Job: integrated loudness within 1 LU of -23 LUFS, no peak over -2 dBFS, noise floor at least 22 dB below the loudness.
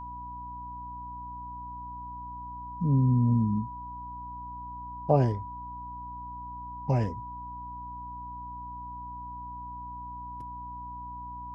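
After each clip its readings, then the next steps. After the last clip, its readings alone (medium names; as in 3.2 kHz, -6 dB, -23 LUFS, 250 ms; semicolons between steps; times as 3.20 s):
hum 60 Hz; highest harmonic 300 Hz; hum level -45 dBFS; steady tone 980 Hz; tone level -38 dBFS; loudness -33.0 LUFS; peak level -10.5 dBFS; loudness target -23.0 LUFS
-> de-hum 60 Hz, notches 5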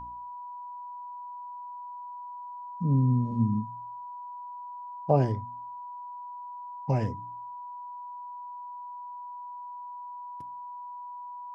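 hum not found; steady tone 980 Hz; tone level -38 dBFS
-> band-stop 980 Hz, Q 30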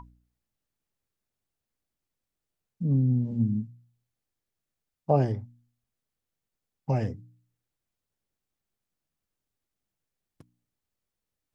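steady tone not found; loudness -27.5 LUFS; peak level -11.0 dBFS; loudness target -23.0 LUFS
-> trim +4.5 dB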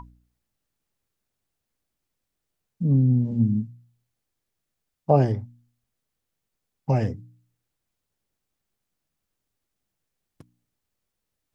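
loudness -23.0 LUFS; peak level -6.5 dBFS; noise floor -82 dBFS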